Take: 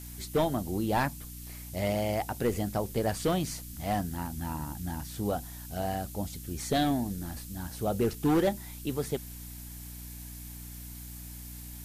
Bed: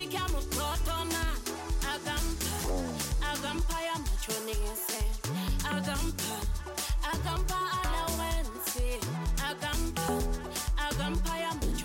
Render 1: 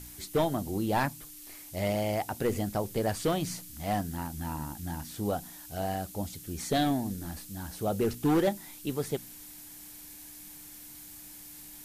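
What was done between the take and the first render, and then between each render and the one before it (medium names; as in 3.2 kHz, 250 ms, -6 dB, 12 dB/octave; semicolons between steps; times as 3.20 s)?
de-hum 60 Hz, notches 4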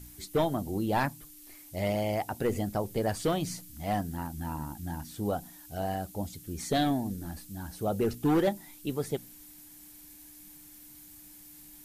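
noise reduction 6 dB, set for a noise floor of -48 dBFS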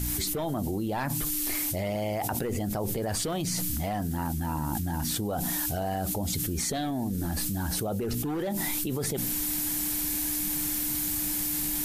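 peak limiter -26.5 dBFS, peak gain reduction 8 dB; level flattener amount 100%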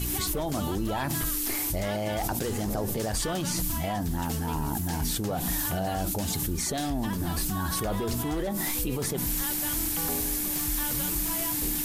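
add bed -5 dB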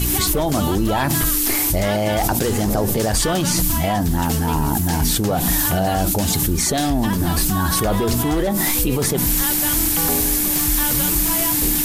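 trim +10.5 dB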